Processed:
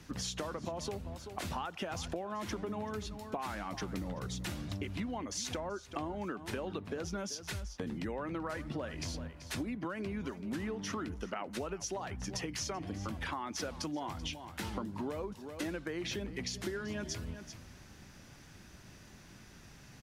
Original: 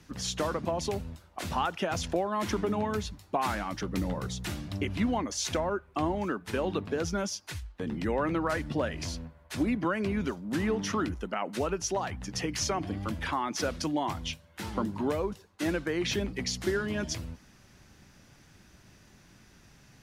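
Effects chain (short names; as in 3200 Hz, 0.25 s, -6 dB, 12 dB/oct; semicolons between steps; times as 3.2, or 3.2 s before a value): echo 0.384 s -17.5 dB; compressor 6:1, threshold -38 dBFS, peak gain reduction 14 dB; gain +2 dB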